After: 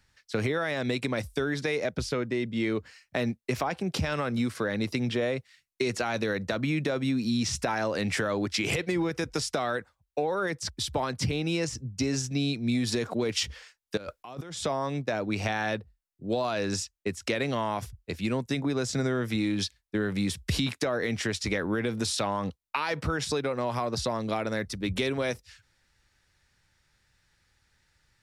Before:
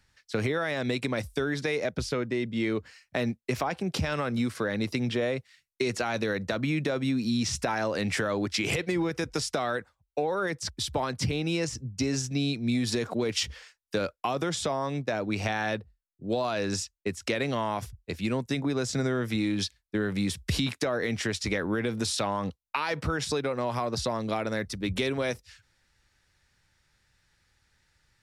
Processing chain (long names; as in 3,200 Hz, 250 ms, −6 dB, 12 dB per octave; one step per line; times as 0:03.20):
0:13.97–0:14.64: compressor whose output falls as the input rises −40 dBFS, ratio −1